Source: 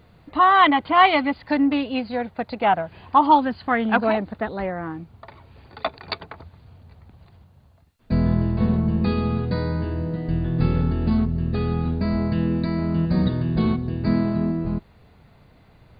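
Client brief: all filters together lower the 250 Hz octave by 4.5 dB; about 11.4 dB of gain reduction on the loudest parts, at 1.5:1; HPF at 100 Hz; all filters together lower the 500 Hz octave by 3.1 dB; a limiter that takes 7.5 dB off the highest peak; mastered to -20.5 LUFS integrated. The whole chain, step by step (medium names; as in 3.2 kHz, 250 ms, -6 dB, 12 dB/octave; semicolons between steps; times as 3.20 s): high-pass 100 Hz; peaking EQ 250 Hz -5 dB; peaking EQ 500 Hz -3 dB; compression 1.5:1, threshold -44 dBFS; trim +14.5 dB; peak limiter -9 dBFS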